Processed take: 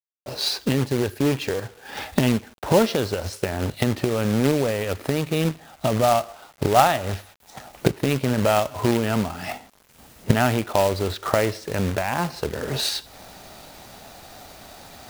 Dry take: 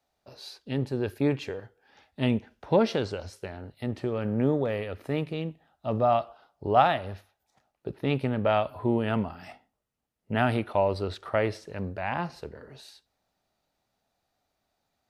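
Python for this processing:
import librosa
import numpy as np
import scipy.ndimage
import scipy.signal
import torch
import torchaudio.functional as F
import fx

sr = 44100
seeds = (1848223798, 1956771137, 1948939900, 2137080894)

y = fx.recorder_agc(x, sr, target_db=-18.0, rise_db_per_s=36.0, max_gain_db=30)
y = fx.quant_companded(y, sr, bits=4)
y = y * 10.0 ** (4.0 / 20.0)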